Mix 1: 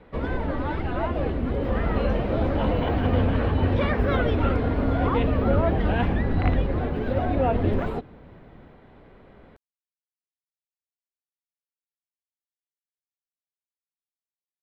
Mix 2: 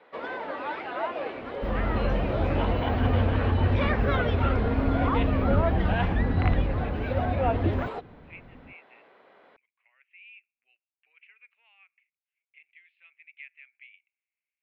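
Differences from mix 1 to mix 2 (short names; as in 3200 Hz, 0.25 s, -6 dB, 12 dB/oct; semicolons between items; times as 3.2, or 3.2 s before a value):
speech: unmuted; first sound: add BPF 570–6600 Hz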